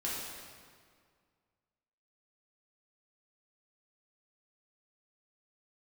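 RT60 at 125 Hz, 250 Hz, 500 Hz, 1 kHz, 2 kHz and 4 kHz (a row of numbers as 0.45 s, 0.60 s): 2.3 s, 2.1 s, 2.0 s, 1.9 s, 1.7 s, 1.5 s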